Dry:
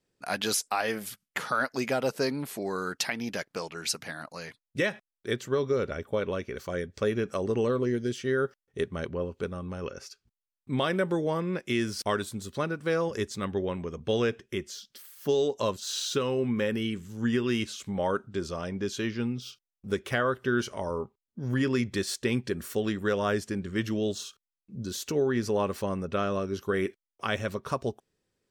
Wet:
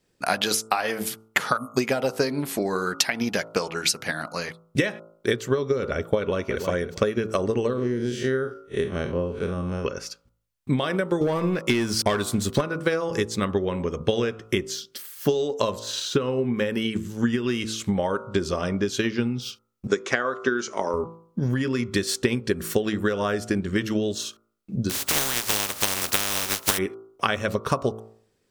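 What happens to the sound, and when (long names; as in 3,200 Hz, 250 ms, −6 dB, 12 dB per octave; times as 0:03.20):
0:01.57–0:01.77: time-frequency box erased 270–6,500 Hz
0:06.18–0:06.62: delay throw 320 ms, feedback 25%, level −10 dB
0:07.73–0:09.85: spectrum smeared in time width 106 ms
0:11.21–0:12.61: leveller curve on the samples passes 2
0:15.79–0:16.54: high-shelf EQ 3,000 Hz −10.5 dB
0:19.87–0:20.94: loudspeaker in its box 280–7,100 Hz, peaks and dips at 590 Hz −4 dB, 3,000 Hz −6 dB, 6,800 Hz +9 dB
0:24.89–0:26.77: compressing power law on the bin magnitudes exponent 0.13
whole clip: hum removal 55.21 Hz, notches 26; downward compressor, threshold −31 dBFS; transient designer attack +5 dB, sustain −1 dB; level +9 dB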